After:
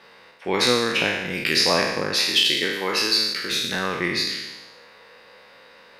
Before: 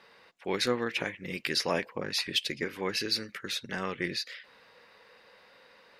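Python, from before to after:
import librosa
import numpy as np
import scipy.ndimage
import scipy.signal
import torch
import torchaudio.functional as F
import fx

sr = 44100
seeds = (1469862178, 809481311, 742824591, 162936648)

y = fx.spec_trails(x, sr, decay_s=1.1)
y = fx.highpass(y, sr, hz=290.0, slope=6, at=(2.14, 3.51))
y = y * librosa.db_to_amplitude(6.0)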